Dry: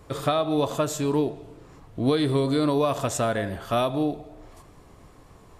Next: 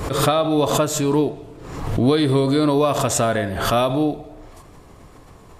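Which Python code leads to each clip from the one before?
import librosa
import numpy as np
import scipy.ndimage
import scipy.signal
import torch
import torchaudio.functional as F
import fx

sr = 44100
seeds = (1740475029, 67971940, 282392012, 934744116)

y = fx.pre_swell(x, sr, db_per_s=52.0)
y = F.gain(torch.from_numpy(y), 5.0).numpy()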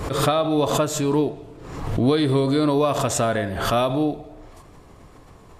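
y = fx.high_shelf(x, sr, hz=8600.0, db=-4.0)
y = F.gain(torch.from_numpy(y), -2.0).numpy()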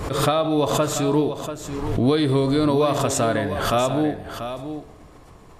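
y = x + 10.0 ** (-10.0 / 20.0) * np.pad(x, (int(688 * sr / 1000.0), 0))[:len(x)]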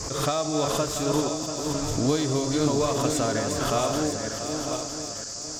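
y = fx.reverse_delay_fb(x, sr, ms=477, feedback_pct=60, wet_db=-5.0)
y = np.sign(y) * np.maximum(np.abs(y) - 10.0 ** (-40.5 / 20.0), 0.0)
y = fx.dmg_noise_band(y, sr, seeds[0], low_hz=4600.0, high_hz=7500.0, level_db=-31.0)
y = F.gain(torch.from_numpy(y), -5.5).numpy()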